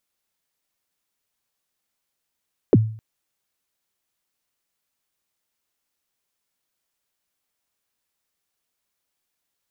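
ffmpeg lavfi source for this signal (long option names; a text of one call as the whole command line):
ffmpeg -f lavfi -i "aevalsrc='0.447*pow(10,-3*t/0.48)*sin(2*PI*(510*0.035/log(110/510)*(exp(log(110/510)*min(t,0.035)/0.035)-1)+110*max(t-0.035,0)))':duration=0.26:sample_rate=44100" out.wav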